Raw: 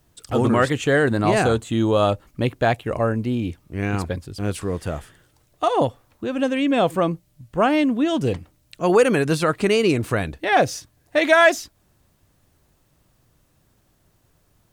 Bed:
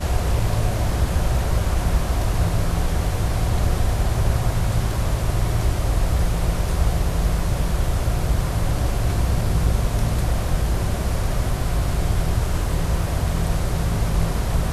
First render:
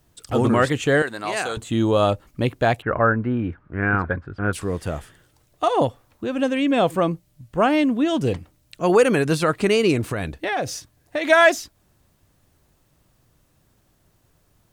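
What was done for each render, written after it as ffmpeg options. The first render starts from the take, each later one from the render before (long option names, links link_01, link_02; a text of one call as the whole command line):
ffmpeg -i in.wav -filter_complex "[0:a]asettb=1/sr,asplit=3[link_01][link_02][link_03];[link_01]atrim=end=1.024[link_04];[link_02]atrim=start=1.02:end=1.57,asetpts=PTS-STARTPTS,afade=type=in:duration=0.004:curve=qsin,afade=type=out:start_time=0.546:duration=0.004:curve=qsin,highpass=frequency=1400:poles=1[link_05];[link_03]atrim=start=1.566[link_06];[link_04][link_05]acrossfade=duration=0.004:curve1=hsin:curve2=qsin[link_07];[link_07][link_06]acrossfade=duration=0.004:curve1=qsin:curve2=hsin,asettb=1/sr,asplit=3[link_08][link_09][link_10];[link_08]atrim=end=2.824[link_11];[link_09]atrim=start=2.82:end=4.53,asetpts=PTS-STARTPTS,afade=type=in:duration=0.004:curve=qsin,afade=type=out:start_time=1.706:duration=0.004:curve=qsin,lowpass=frequency=1500:width_type=q:width=4.8[link_12];[link_10]atrim=start=4.526[link_13];[link_11][link_12]acrossfade=duration=0.004:curve1=hsin:curve2=qsin[link_14];[link_14][link_13]acrossfade=duration=0.004:curve1=qsin:curve2=hsin,asettb=1/sr,asplit=3[link_15][link_16][link_17];[link_15]atrim=end=10.014[link_18];[link_16]atrim=start=10.01:end=11.3,asetpts=PTS-STARTPTS,afade=type=in:duration=0.004:curve=qsin,afade=type=out:start_time=1.286:duration=0.004:curve=qsin,acompressor=threshold=-20dB:ratio=6:attack=3.2:release=140:knee=1:detection=peak[link_19];[link_17]atrim=start=11.296[link_20];[link_18][link_19]acrossfade=duration=0.004:curve1=hsin:curve2=qsin[link_21];[link_21][link_20]acrossfade=duration=0.004:curve1=qsin:curve2=hsin" out.wav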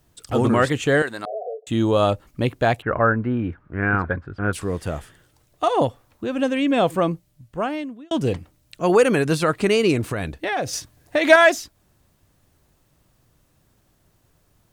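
ffmpeg -i in.wav -filter_complex "[0:a]asettb=1/sr,asplit=3[link_01][link_02][link_03];[link_01]atrim=end=1.254[link_04];[link_02]atrim=start=1.25:end=1.67,asetpts=PTS-STARTPTS,afade=type=in:duration=0.004:curve=qsin,afade=type=out:start_time=0.416:duration=0.004:curve=qsin,asuperpass=centerf=550:order=20:qfactor=1.7[link_05];[link_03]atrim=start=1.666[link_06];[link_04][link_05]acrossfade=duration=0.004:curve1=hsin:curve2=qsin[link_07];[link_07][link_06]acrossfade=duration=0.004:curve1=qsin:curve2=hsin,asettb=1/sr,asplit=3[link_08][link_09][link_10];[link_08]atrim=end=10.734[link_11];[link_09]atrim=start=10.73:end=11.36,asetpts=PTS-STARTPTS,afade=type=in:duration=0.004:curve=qsin,afade=type=out:start_time=0.626:duration=0.004:curve=qsin,acontrast=26[link_12];[link_10]atrim=start=11.356[link_13];[link_11][link_12]acrossfade=duration=0.004:curve1=hsin:curve2=qsin[link_14];[link_14][link_13]acrossfade=duration=0.004:curve1=qsin:curve2=hsin,asplit=2[link_15][link_16];[link_15]atrim=end=8.11,asetpts=PTS-STARTPTS,afade=type=out:start_time=7.11:duration=1[link_17];[link_16]atrim=start=8.11,asetpts=PTS-STARTPTS,afade=type=in:duration=0.004:curve=hsin[link_18];[link_17][link_18]concat=n=2:v=0:a=1" out.wav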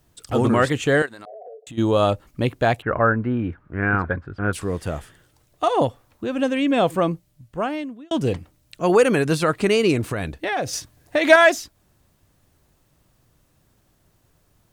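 ffmpeg -i in.wav -filter_complex "[0:a]asplit=3[link_01][link_02][link_03];[link_01]afade=type=out:start_time=1.05:duration=0.02[link_04];[link_02]acompressor=threshold=-37dB:ratio=5:attack=3.2:release=140:knee=1:detection=peak,afade=type=in:start_time=1.05:duration=0.02,afade=type=out:start_time=1.77:duration=0.02[link_05];[link_03]afade=type=in:start_time=1.77:duration=0.02[link_06];[link_04][link_05][link_06]amix=inputs=3:normalize=0" out.wav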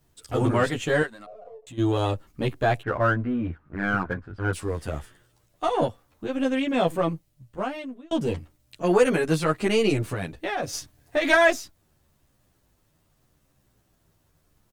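ffmpeg -i in.wav -filter_complex "[0:a]aeval=exprs='if(lt(val(0),0),0.708*val(0),val(0))':channel_layout=same,asplit=2[link_01][link_02];[link_02]adelay=10.7,afreqshift=-0.83[link_03];[link_01][link_03]amix=inputs=2:normalize=1" out.wav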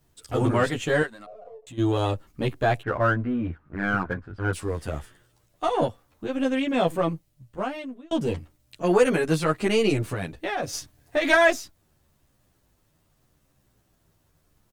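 ffmpeg -i in.wav -af anull out.wav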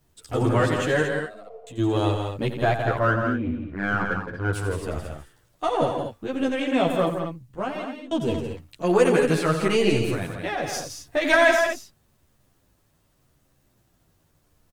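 ffmpeg -i in.wav -af "aecho=1:1:87.46|166.2|227.4:0.316|0.447|0.355" out.wav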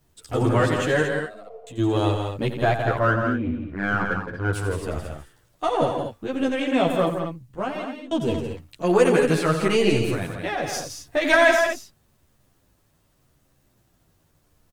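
ffmpeg -i in.wav -af "volume=1dB" out.wav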